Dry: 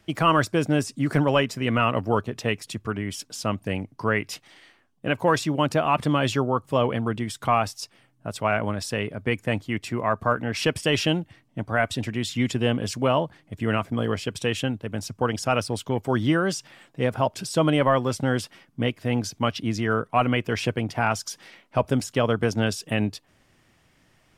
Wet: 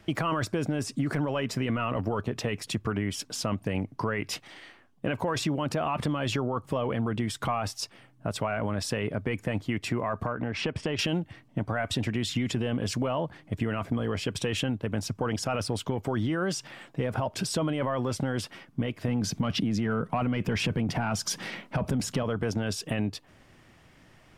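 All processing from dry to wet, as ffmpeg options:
ffmpeg -i in.wav -filter_complex "[0:a]asettb=1/sr,asplit=3[link_01][link_02][link_03];[link_01]atrim=end=10.264[link_04];[link_02]atrim=start=10.26:end=10.99,asetpts=PTS-STARTPTS,afade=type=in:duration=0.004:curve=qsin,afade=type=out:start_time=0.726:duration=0.004:curve=qsin,lowpass=9300,aemphasis=mode=reproduction:type=75fm,acompressor=threshold=-31dB:ratio=4:attack=3.2:release=140:knee=1:detection=peak[link_05];[link_03]atrim=start=10.986[link_06];[link_04][link_05]acrossfade=duration=0.004:curve1=hsin:curve2=qsin[link_07];[link_07][link_06]acrossfade=duration=0.004:curve1=qsin:curve2=hsin,asettb=1/sr,asplit=3[link_08][link_09][link_10];[link_08]atrim=end=19.084[link_11];[link_09]atrim=start=19.08:end=22.23,asetpts=PTS-STARTPTS,afade=type=in:duration=0.004:curve=qsin,afade=type=out:start_time=3.146:duration=0.004:curve=qsin,equalizer=frequency=180:width_type=o:width=0.93:gain=9,acontrast=51[link_12];[link_10]atrim=start=22.226[link_13];[link_11][link_12]acrossfade=duration=0.004:curve1=hsin:curve2=qsin[link_14];[link_14][link_13]acrossfade=duration=0.004:curve1=qsin:curve2=hsin,alimiter=limit=-19.5dB:level=0:latency=1:release=14,highshelf=frequency=4000:gain=-6.5,acompressor=threshold=-30dB:ratio=6,volume=5.5dB" out.wav

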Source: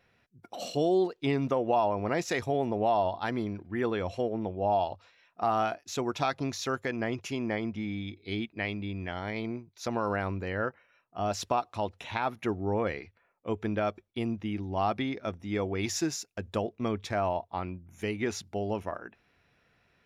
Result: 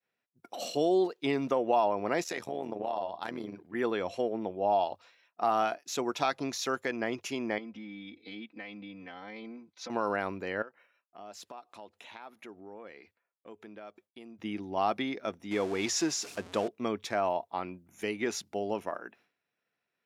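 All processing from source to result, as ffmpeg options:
ffmpeg -i in.wav -filter_complex "[0:a]asettb=1/sr,asplit=3[link_01][link_02][link_03];[link_01]atrim=end=2.244[link_04];[link_02]atrim=start=2.24:end=3.75,asetpts=PTS-STARTPTS,afade=type=in:duration=0.004:curve=qsin,afade=type=out:start_time=1.506:duration=0.004:curve=qsin,acompressor=threshold=-29dB:ratio=2:attack=3.2:release=140:knee=1:detection=peak,asoftclip=type=hard:threshold=-21dB,tremolo=f=81:d=0.788[link_05];[link_03]atrim=start=3.746[link_06];[link_04][link_05]acrossfade=duration=0.004:curve1=hsin:curve2=qsin[link_07];[link_07][link_06]acrossfade=duration=0.004:curve1=qsin:curve2=hsin,asettb=1/sr,asplit=3[link_08][link_09][link_10];[link_08]atrim=end=7.584[link_11];[link_09]atrim=start=7.58:end=9.9,asetpts=PTS-STARTPTS,afade=type=in:duration=0.004:curve=qsin,afade=type=out:start_time=2.316:duration=0.004:curve=qsin,lowpass=4700,acompressor=threshold=-43dB:ratio=4:attack=3.2:release=140:knee=1:detection=peak,aecho=1:1:3.9:0.97,atrim=end_sample=102312[link_12];[link_10]atrim=start=9.896[link_13];[link_11][link_12]acrossfade=duration=0.004:curve1=hsin:curve2=qsin[link_14];[link_14][link_13]acrossfade=duration=0.004:curve1=qsin:curve2=hsin,asettb=1/sr,asplit=3[link_15][link_16][link_17];[link_15]atrim=end=10.624[link_18];[link_16]atrim=start=10.62:end=14.39,asetpts=PTS-STARTPTS,afade=type=in:duration=0.004:curve=qsin,afade=type=out:start_time=3.766:duration=0.004:curve=qsin,equalizer=frequency=120:width_type=o:width=0.37:gain=-12,bandreject=frequency=5700:width=19,acompressor=threshold=-51dB:ratio=2.5:attack=3.2:release=140:knee=1:detection=peak[link_19];[link_17]atrim=start=14.386[link_20];[link_18][link_19]acrossfade=duration=0.004:curve1=hsin:curve2=qsin[link_21];[link_21][link_20]acrossfade=duration=0.004:curve1=qsin:curve2=hsin,asettb=1/sr,asplit=3[link_22][link_23][link_24];[link_22]atrim=end=15.514[link_25];[link_23]atrim=start=15.51:end=16.68,asetpts=PTS-STARTPTS,afade=type=in:duration=0.004:curve=qsin,afade=type=out:start_time=1.166:duration=0.004:curve=qsin,aeval=exprs='val(0)+0.5*0.0126*sgn(val(0))':channel_layout=same,lowpass=8100[link_26];[link_24]atrim=start=16.676[link_27];[link_25][link_26]acrossfade=duration=0.004:curve1=hsin:curve2=qsin[link_28];[link_28][link_27]acrossfade=duration=0.004:curve1=qsin:curve2=hsin,highpass=230,agate=range=-33dB:threshold=-58dB:ratio=3:detection=peak,highshelf=frequency=7100:gain=4.5" out.wav

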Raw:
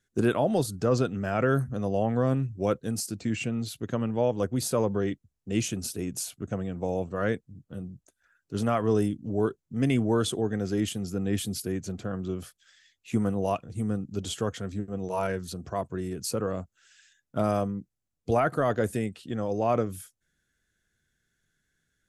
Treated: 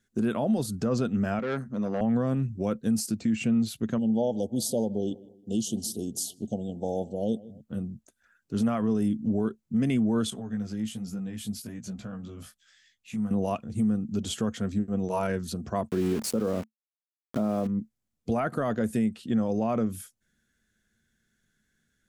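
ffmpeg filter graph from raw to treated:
ffmpeg -i in.wav -filter_complex "[0:a]asettb=1/sr,asplit=3[link_01][link_02][link_03];[link_01]atrim=end=1.394[link_04];[link_02]atrim=start=1.39:end=2.01,asetpts=PTS-STARTPTS,afade=type=in:duration=0.004:curve=qsin,afade=type=out:start_time=0.616:duration=0.004:curve=qsin,aeval=exprs='(tanh(15.8*val(0)+0.6)-tanh(0.6))/15.8':channel_layout=same,highpass=200,lowpass=6300[link_05];[link_03]atrim=start=2.006[link_06];[link_04][link_05]acrossfade=duration=0.004:curve1=hsin:curve2=qsin[link_07];[link_07][link_06]acrossfade=duration=0.004:curve1=qsin:curve2=hsin,asettb=1/sr,asplit=3[link_08][link_09][link_10];[link_08]atrim=end=3.984[link_11];[link_09]atrim=start=3.98:end=7.61,asetpts=PTS-STARTPTS,afade=type=in:duration=0.004:curve=qsin,afade=type=out:start_time=3.626:duration=0.004:curve=qsin,asuperstop=centerf=1600:order=20:qfactor=0.76,lowshelf=frequency=260:gain=-9,asplit=2[link_12][link_13];[link_13]adelay=157,lowpass=frequency=1600:poles=1,volume=-21dB,asplit=2[link_14][link_15];[link_15]adelay=157,lowpass=frequency=1600:poles=1,volume=0.47,asplit=2[link_16][link_17];[link_17]adelay=157,lowpass=frequency=1600:poles=1,volume=0.47[link_18];[link_12][link_14][link_16][link_18]amix=inputs=4:normalize=0,atrim=end_sample=160083[link_19];[link_10]atrim=start=7.606[link_20];[link_11][link_19]acrossfade=duration=0.004:curve1=hsin:curve2=qsin[link_21];[link_21][link_20]acrossfade=duration=0.004:curve1=qsin:curve2=hsin,asettb=1/sr,asplit=3[link_22][link_23][link_24];[link_22]atrim=end=10.304[link_25];[link_23]atrim=start=10.3:end=13.31,asetpts=PTS-STARTPTS,afade=type=in:duration=0.004:curve=qsin,afade=type=out:start_time=3.006:duration=0.004:curve=qsin,equalizer=frequency=370:width=2.2:gain=-10,acompressor=threshold=-34dB:ratio=6:attack=3.2:release=140:knee=1:detection=peak,flanger=delay=15.5:depth=3.7:speed=1.2[link_26];[link_24]atrim=start=13.306[link_27];[link_25][link_26]acrossfade=duration=0.004:curve1=hsin:curve2=qsin[link_28];[link_28][link_27]acrossfade=duration=0.004:curve1=qsin:curve2=hsin,asettb=1/sr,asplit=3[link_29][link_30][link_31];[link_29]atrim=end=15.894[link_32];[link_30]atrim=start=15.89:end=17.67,asetpts=PTS-STARTPTS,afade=type=in:duration=0.004:curve=qsin,afade=type=out:start_time=1.776:duration=0.004:curve=qsin,equalizer=frequency=400:width_type=o:width=2.6:gain=9.5,aeval=exprs='val(0)*gte(abs(val(0)),0.0211)':channel_layout=same[link_33];[link_31]atrim=start=17.666[link_34];[link_32][link_33]acrossfade=duration=0.004:curve1=hsin:curve2=qsin[link_35];[link_35][link_34]acrossfade=duration=0.004:curve1=qsin:curve2=hsin,equalizer=frequency=220:width=5.2:gain=12,alimiter=limit=-19.5dB:level=0:latency=1:release=159,volume=1.5dB" out.wav

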